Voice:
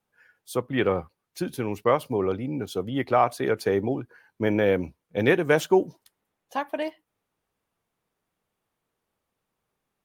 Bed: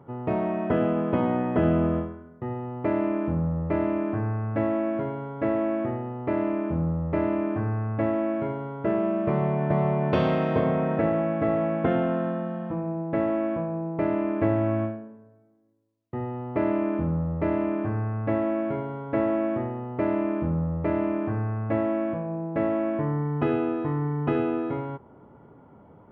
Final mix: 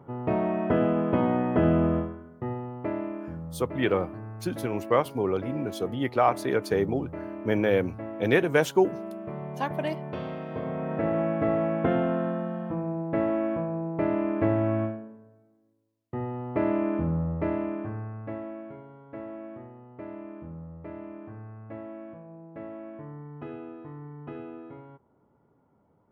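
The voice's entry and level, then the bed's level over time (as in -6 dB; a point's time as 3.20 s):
3.05 s, -1.5 dB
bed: 2.46 s 0 dB
3.39 s -12 dB
10.47 s -12 dB
11.21 s -1 dB
17.28 s -1 dB
18.79 s -15 dB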